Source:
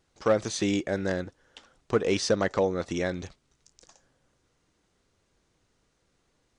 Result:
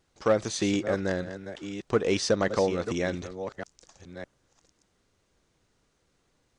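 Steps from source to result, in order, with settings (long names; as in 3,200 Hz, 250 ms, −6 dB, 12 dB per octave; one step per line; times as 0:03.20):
delay that plays each chunk backwards 606 ms, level −10.5 dB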